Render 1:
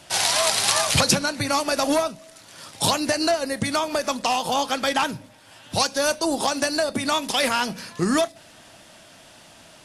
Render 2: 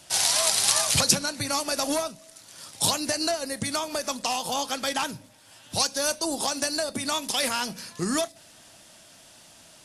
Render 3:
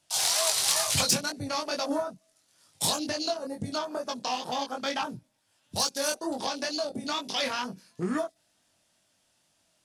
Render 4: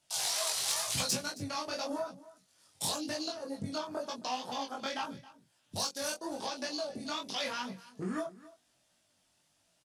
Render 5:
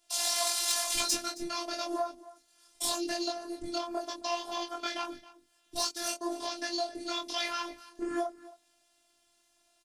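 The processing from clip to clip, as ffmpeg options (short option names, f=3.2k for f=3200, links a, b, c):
-af "bass=f=250:g=1,treble=f=4k:g=8,volume=-6.5dB"
-af "afwtdn=0.0224,flanger=delay=20:depth=3.7:speed=2.2,aeval=exprs='0.376*sin(PI/2*1.41*val(0)/0.376)':c=same,volume=-6dB"
-filter_complex "[0:a]asplit=2[a][b];[b]acompressor=threshold=-36dB:ratio=6,volume=0.5dB[c];[a][c]amix=inputs=2:normalize=0,flanger=delay=15.5:depth=7.3:speed=0.91,aecho=1:1:270:0.112,volume=-6dB"
-af "afftfilt=real='hypot(re,im)*cos(PI*b)':imag='0':win_size=512:overlap=0.75,volume=6dB"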